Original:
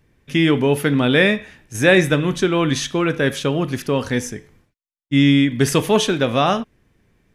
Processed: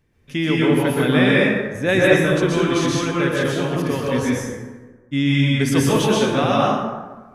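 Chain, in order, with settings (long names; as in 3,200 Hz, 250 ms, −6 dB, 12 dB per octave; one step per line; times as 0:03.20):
0:01.36–0:01.89: high-shelf EQ 2,100 Hz −10 dB
dense smooth reverb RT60 1.3 s, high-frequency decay 0.5×, pre-delay 110 ms, DRR −5 dB
level −6 dB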